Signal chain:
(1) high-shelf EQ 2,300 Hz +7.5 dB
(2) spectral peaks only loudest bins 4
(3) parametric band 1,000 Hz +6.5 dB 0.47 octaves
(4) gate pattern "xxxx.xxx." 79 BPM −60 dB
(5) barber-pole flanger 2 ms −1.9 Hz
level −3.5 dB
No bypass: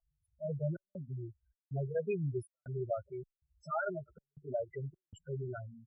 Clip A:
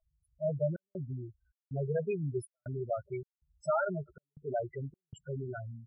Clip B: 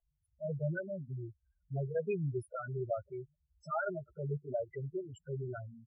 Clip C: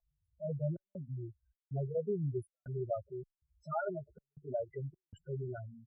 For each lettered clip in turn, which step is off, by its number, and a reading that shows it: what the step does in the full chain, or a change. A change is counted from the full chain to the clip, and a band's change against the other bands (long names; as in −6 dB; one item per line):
5, change in integrated loudness +3.0 LU
4, 2 kHz band +2.0 dB
1, 2 kHz band −5.5 dB